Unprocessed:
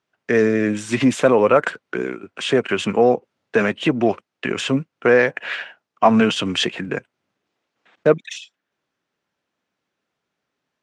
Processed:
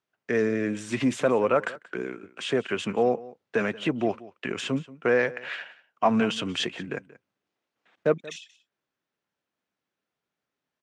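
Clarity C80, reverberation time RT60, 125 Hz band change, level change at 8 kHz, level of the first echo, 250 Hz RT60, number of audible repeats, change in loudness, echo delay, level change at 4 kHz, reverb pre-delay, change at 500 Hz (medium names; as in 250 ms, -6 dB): no reverb, no reverb, -8.0 dB, -8.0 dB, -19.5 dB, no reverb, 1, -8.0 dB, 181 ms, -8.0 dB, no reverb, -8.0 dB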